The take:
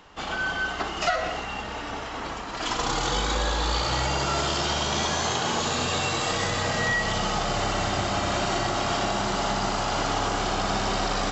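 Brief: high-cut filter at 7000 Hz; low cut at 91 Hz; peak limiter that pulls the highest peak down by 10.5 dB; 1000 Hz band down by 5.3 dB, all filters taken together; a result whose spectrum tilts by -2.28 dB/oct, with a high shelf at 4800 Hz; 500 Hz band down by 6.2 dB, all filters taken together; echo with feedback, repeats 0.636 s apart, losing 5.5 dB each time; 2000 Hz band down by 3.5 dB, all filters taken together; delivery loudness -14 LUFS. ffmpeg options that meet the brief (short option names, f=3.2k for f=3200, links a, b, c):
-af "highpass=91,lowpass=7k,equalizer=f=500:t=o:g=-7,equalizer=f=1k:t=o:g=-4,equalizer=f=2k:t=o:g=-4,highshelf=f=4.8k:g=8,alimiter=level_in=0.5dB:limit=-24dB:level=0:latency=1,volume=-0.5dB,aecho=1:1:636|1272|1908|2544|3180|3816|4452:0.531|0.281|0.149|0.079|0.0419|0.0222|0.0118,volume=17dB"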